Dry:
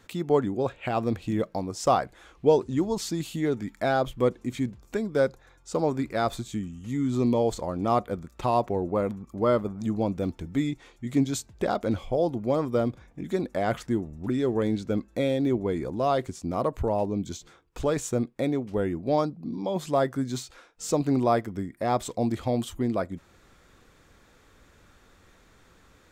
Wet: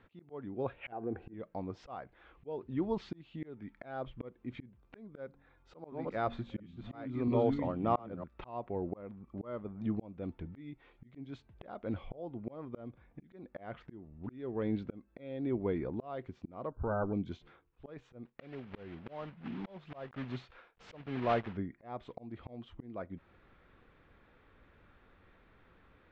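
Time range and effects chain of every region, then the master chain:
0.92–1.34 s: compression 3:1, threshold -27 dBFS + peaking EQ 3.6 kHz -14 dB 1.4 oct + small resonant body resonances 400/750/1500 Hz, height 14 dB, ringing for 20 ms
5.24–8.24 s: chunks repeated in reverse 680 ms, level -1 dB + de-hum 46.63 Hz, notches 6
16.71–17.13 s: comb filter that takes the minimum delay 0.38 ms + brick-wall FIR low-pass 1.6 kHz
18.25–21.59 s: block-companded coder 3-bit + peaking EQ 300 Hz -6 dB 0.36 oct
whole clip: low-pass 3 kHz 24 dB/octave; slow attack 493 ms; trim -5.5 dB

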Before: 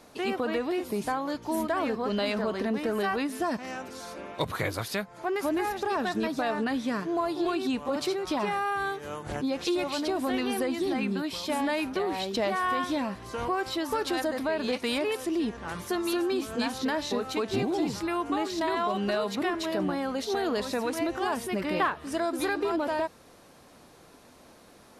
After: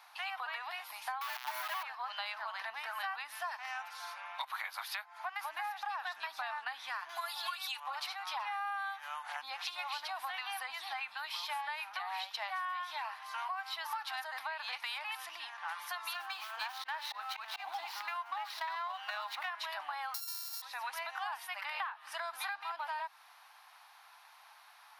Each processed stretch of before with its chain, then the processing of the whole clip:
1.21–1.83 s: robot voice 126 Hz + companded quantiser 2-bit
7.09–7.80 s: RIAA curve recording + comb 3.5 ms, depth 76%
16.14–19.49 s: slow attack 108 ms + sliding maximum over 3 samples
20.14–20.62 s: sorted samples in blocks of 32 samples + FFT filter 220 Hz 0 dB, 460 Hz -21 dB, 880 Hz -15 dB, 3 kHz -12 dB, 4.8 kHz +13 dB
whole clip: elliptic high-pass 820 Hz, stop band 50 dB; peaking EQ 7.6 kHz -13.5 dB 0.82 oct; compression 10:1, threshold -37 dBFS; trim +1.5 dB

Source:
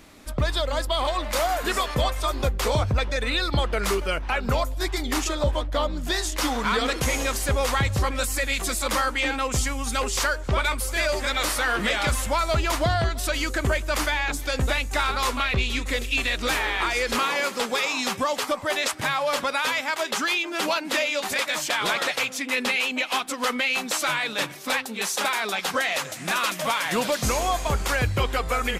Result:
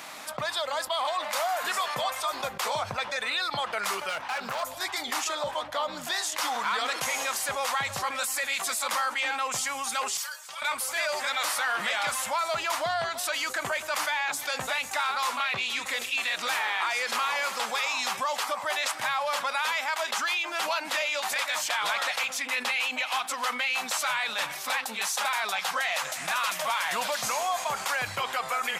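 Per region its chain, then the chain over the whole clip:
4.09–4.63 s: high-pass 45 Hz + hard clipper -26.5 dBFS
10.17–10.62 s: differentiator + inharmonic resonator 67 Hz, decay 0.23 s, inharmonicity 0.008
whole clip: high-pass 130 Hz 24 dB/octave; resonant low shelf 530 Hz -12.5 dB, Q 1.5; level flattener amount 50%; trim -6 dB

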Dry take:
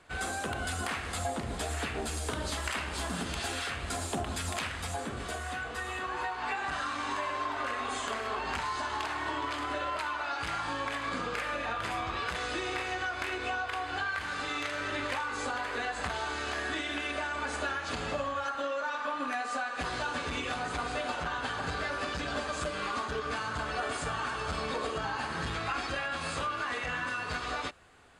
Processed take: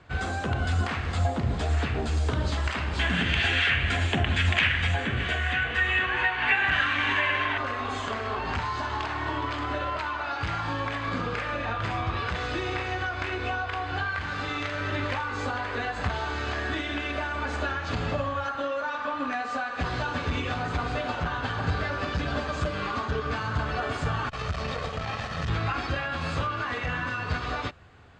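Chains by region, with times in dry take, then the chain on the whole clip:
2.99–7.58 s: high-order bell 2.3 kHz +13 dB 1.3 oct + band-stop 5.1 kHz, Q 15
24.29–25.49 s: comb filter that takes the minimum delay 1.6 ms + treble shelf 2.2 kHz +3.5 dB + transformer saturation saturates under 430 Hz
whole clip: Bessel low-pass 4.6 kHz, order 8; peaking EQ 100 Hz +12 dB 1.7 oct; trim +3 dB

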